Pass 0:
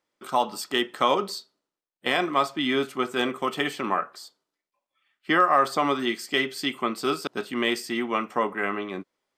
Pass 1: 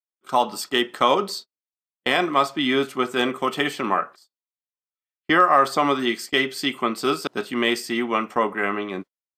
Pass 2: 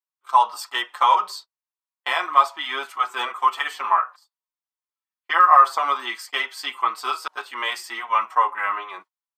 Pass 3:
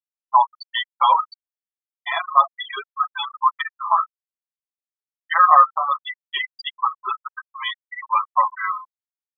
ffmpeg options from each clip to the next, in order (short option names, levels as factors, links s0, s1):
-af "agate=range=0.0178:threshold=0.0112:ratio=16:detection=peak,volume=1.5"
-filter_complex "[0:a]highpass=f=980:t=q:w=3.7,asplit=2[s0][s1];[s1]adelay=5.5,afreqshift=-2.8[s2];[s0][s2]amix=inputs=2:normalize=1,volume=0.891"
-af "afftfilt=real='re*gte(hypot(re,im),0.178)':imag='im*gte(hypot(re,im),0.178)':win_size=1024:overlap=0.75,aexciter=amount=3.7:drive=2.6:freq=3600,volume=1.12"